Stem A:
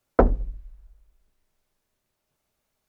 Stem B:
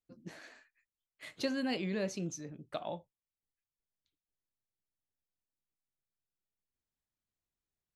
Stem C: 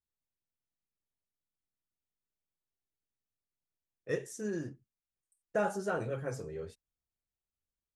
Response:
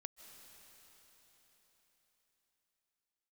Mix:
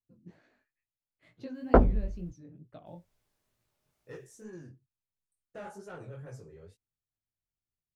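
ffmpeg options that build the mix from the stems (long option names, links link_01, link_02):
-filter_complex "[0:a]adelay=1550,volume=1dB,asplit=3[link_01][link_02][link_03];[link_01]atrim=end=2.31,asetpts=PTS-STARTPTS,afade=type=out:start_time=2.306:duration=0.004:curve=hsin[link_04];[link_02]atrim=start=2.31:end=2.86,asetpts=PTS-STARTPTS,volume=0[link_05];[link_03]atrim=start=2.86,asetpts=PTS-STARTPTS,afade=type=in:duration=0.004:curve=hsin[link_06];[link_04][link_05][link_06]concat=n=3:v=0:a=1[link_07];[1:a]lowpass=frequency=2500:poles=1,lowshelf=frequency=430:gain=12,volume=-11.5dB[link_08];[2:a]asoftclip=type=tanh:threshold=-28.5dB,volume=-6.5dB[link_09];[link_07][link_08][link_09]amix=inputs=3:normalize=0,equalizer=frequency=110:width=1.5:gain=6.5,flanger=delay=16.5:depth=7.6:speed=2.2"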